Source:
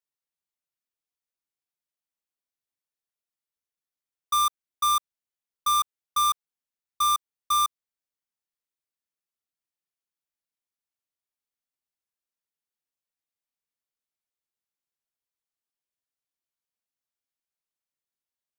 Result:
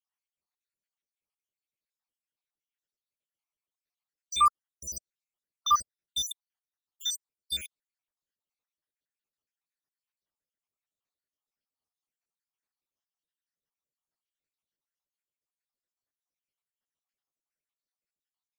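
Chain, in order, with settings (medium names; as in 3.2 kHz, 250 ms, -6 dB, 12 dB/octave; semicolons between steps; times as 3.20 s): random holes in the spectrogram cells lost 75%; treble shelf 9.5 kHz -11 dB; trim +4 dB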